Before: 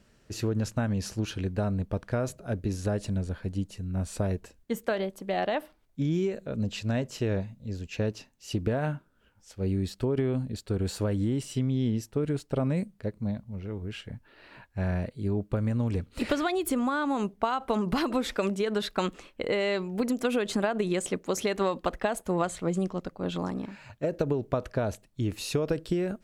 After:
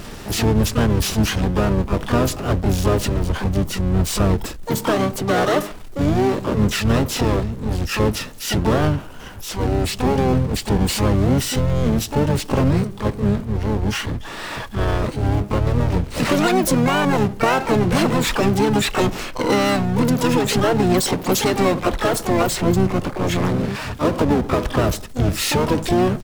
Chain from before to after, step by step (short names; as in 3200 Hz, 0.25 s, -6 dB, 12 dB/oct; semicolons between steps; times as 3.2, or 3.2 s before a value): power-law curve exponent 0.5; harmoniser -12 st -6 dB, -7 st -3 dB, +12 st -5 dB